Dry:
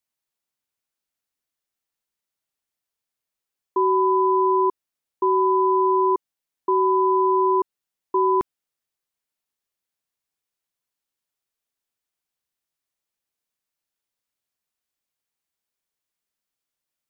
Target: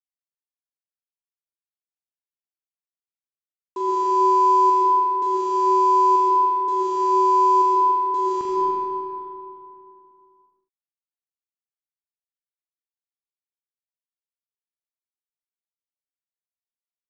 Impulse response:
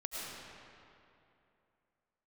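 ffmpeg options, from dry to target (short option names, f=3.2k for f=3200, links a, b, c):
-filter_complex "[0:a]aresample=16000,acrusher=bits=5:mix=0:aa=0.5,aresample=44100,aecho=1:1:42|79:0.531|0.376[a];[1:a]atrim=start_sample=2205[b];[a][b]afir=irnorm=-1:irlink=0,volume=-4dB"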